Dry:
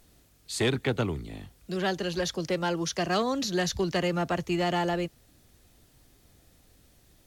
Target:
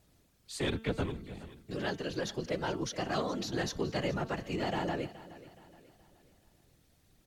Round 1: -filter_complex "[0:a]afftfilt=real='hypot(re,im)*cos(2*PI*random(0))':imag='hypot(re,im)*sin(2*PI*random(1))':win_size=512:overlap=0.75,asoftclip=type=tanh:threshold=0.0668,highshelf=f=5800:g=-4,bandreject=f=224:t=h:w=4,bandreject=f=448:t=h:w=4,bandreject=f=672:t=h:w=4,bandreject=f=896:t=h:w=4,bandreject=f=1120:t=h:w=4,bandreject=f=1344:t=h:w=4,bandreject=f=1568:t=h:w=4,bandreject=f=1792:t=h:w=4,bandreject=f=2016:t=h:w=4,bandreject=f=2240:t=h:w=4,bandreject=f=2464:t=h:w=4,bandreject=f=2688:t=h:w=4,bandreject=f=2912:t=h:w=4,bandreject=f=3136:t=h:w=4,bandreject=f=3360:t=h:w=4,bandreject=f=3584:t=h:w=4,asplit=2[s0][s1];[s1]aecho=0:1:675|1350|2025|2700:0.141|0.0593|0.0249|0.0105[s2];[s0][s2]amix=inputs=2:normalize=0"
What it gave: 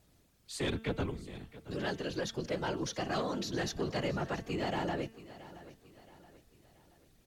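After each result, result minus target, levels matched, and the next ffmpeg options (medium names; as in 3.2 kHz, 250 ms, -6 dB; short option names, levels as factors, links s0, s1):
echo 253 ms late; saturation: distortion +18 dB
-filter_complex "[0:a]afftfilt=real='hypot(re,im)*cos(2*PI*random(0))':imag='hypot(re,im)*sin(2*PI*random(1))':win_size=512:overlap=0.75,asoftclip=type=tanh:threshold=0.0668,highshelf=f=5800:g=-4,bandreject=f=224:t=h:w=4,bandreject=f=448:t=h:w=4,bandreject=f=672:t=h:w=4,bandreject=f=896:t=h:w=4,bandreject=f=1120:t=h:w=4,bandreject=f=1344:t=h:w=4,bandreject=f=1568:t=h:w=4,bandreject=f=1792:t=h:w=4,bandreject=f=2016:t=h:w=4,bandreject=f=2240:t=h:w=4,bandreject=f=2464:t=h:w=4,bandreject=f=2688:t=h:w=4,bandreject=f=2912:t=h:w=4,bandreject=f=3136:t=h:w=4,bandreject=f=3360:t=h:w=4,bandreject=f=3584:t=h:w=4,asplit=2[s0][s1];[s1]aecho=0:1:422|844|1266|1688:0.141|0.0593|0.0249|0.0105[s2];[s0][s2]amix=inputs=2:normalize=0"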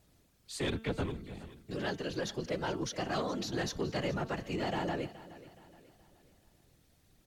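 saturation: distortion +18 dB
-filter_complex "[0:a]afftfilt=real='hypot(re,im)*cos(2*PI*random(0))':imag='hypot(re,im)*sin(2*PI*random(1))':win_size=512:overlap=0.75,asoftclip=type=tanh:threshold=0.224,highshelf=f=5800:g=-4,bandreject=f=224:t=h:w=4,bandreject=f=448:t=h:w=4,bandreject=f=672:t=h:w=4,bandreject=f=896:t=h:w=4,bandreject=f=1120:t=h:w=4,bandreject=f=1344:t=h:w=4,bandreject=f=1568:t=h:w=4,bandreject=f=1792:t=h:w=4,bandreject=f=2016:t=h:w=4,bandreject=f=2240:t=h:w=4,bandreject=f=2464:t=h:w=4,bandreject=f=2688:t=h:w=4,bandreject=f=2912:t=h:w=4,bandreject=f=3136:t=h:w=4,bandreject=f=3360:t=h:w=4,bandreject=f=3584:t=h:w=4,asplit=2[s0][s1];[s1]aecho=0:1:422|844|1266|1688:0.141|0.0593|0.0249|0.0105[s2];[s0][s2]amix=inputs=2:normalize=0"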